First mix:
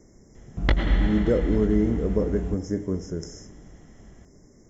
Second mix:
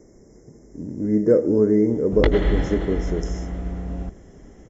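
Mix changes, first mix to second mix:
background: entry +1.55 s; master: add bell 440 Hz +7.5 dB 1.4 oct

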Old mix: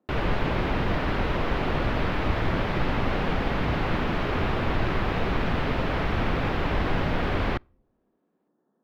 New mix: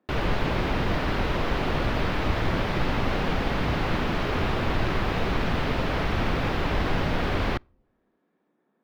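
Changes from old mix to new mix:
speech: remove running mean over 18 samples; background: add tone controls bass 0 dB, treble +7 dB

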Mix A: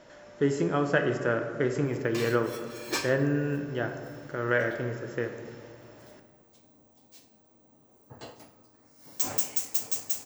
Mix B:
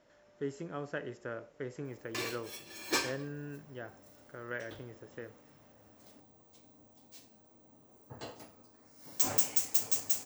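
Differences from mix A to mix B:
speech -11.5 dB; reverb: off

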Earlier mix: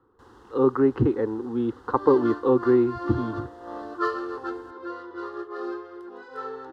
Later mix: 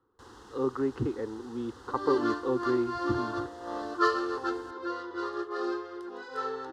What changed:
speech -9.5 dB; master: add bell 6200 Hz +9.5 dB 2.2 oct

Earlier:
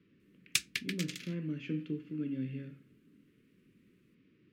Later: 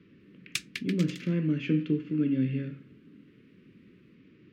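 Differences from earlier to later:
speech +10.0 dB; master: add high shelf 6400 Hz -7.5 dB

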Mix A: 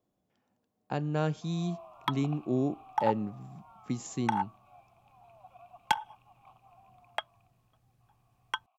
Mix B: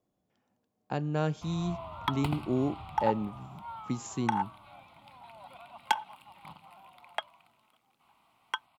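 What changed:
first sound: remove vowel filter a; second sound: add HPF 220 Hz 24 dB/oct

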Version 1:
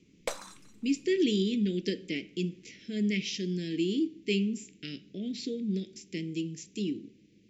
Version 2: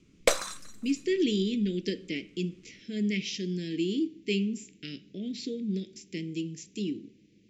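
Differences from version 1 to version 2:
background +11.5 dB; master: add bell 890 Hz -11 dB 0.28 oct

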